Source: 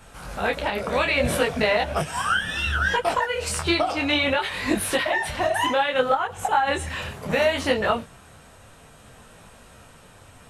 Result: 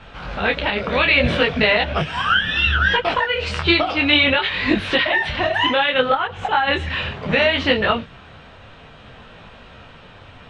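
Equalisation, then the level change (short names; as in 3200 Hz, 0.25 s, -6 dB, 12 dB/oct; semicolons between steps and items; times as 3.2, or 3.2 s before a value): synth low-pass 3400 Hz, resonance Q 1.7; air absorption 73 m; dynamic EQ 750 Hz, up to -5 dB, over -36 dBFS, Q 1; +6.0 dB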